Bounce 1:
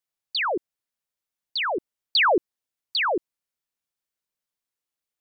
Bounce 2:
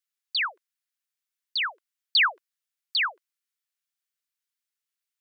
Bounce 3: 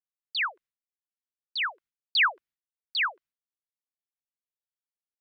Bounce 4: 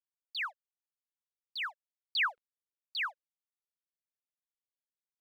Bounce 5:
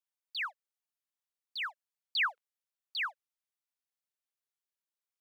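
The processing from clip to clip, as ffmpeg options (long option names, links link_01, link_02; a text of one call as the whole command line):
ffmpeg -i in.wav -af "highpass=frequency=1300:width=0.5412,highpass=frequency=1300:width=1.3066" out.wav
ffmpeg -i in.wav -af "agate=range=-33dB:threshold=-52dB:ratio=3:detection=peak,bass=frequency=250:gain=10,treble=frequency=4000:gain=-10" out.wav
ffmpeg -i in.wav -af "aeval=exprs='sgn(val(0))*max(abs(val(0))-0.002,0)':channel_layout=same,volume=-7.5dB" out.wav
ffmpeg -i in.wav -af "highpass=580" out.wav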